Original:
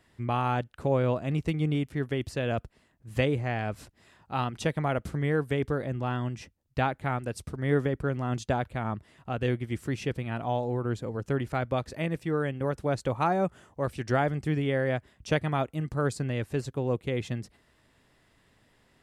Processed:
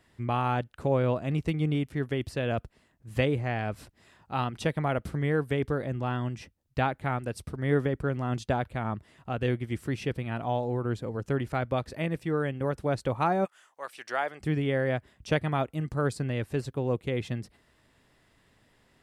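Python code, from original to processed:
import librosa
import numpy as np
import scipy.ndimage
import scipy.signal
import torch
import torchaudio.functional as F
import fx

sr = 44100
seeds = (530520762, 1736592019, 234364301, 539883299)

y = fx.highpass(x, sr, hz=fx.line((13.44, 1500.0), (14.4, 580.0)), slope=12, at=(13.44, 14.4), fade=0.02)
y = fx.dynamic_eq(y, sr, hz=6800.0, q=2.8, threshold_db=-60.0, ratio=4.0, max_db=-5)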